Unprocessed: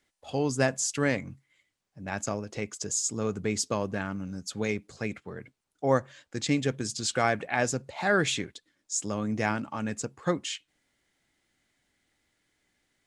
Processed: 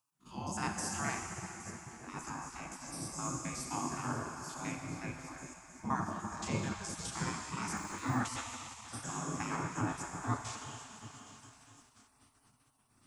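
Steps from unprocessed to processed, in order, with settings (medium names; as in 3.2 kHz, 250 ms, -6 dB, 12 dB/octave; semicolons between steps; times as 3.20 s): spectrogram pixelated in time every 50 ms; tone controls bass +3 dB, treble +1 dB; feedback echo behind a high-pass 819 ms, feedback 78%, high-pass 3.4 kHz, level -16 dB; plate-style reverb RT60 3.6 s, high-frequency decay 0.9×, DRR 2 dB; 7.77–8.23 s: de-esser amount 90%; spectral gate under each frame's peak -15 dB weak; ten-band graphic EQ 125 Hz +11 dB, 250 Hz +10 dB, 500 Hz -11 dB, 1 kHz +5 dB, 2 kHz -7 dB, 4 kHz -10 dB, 8 kHz -4 dB; trim +1 dB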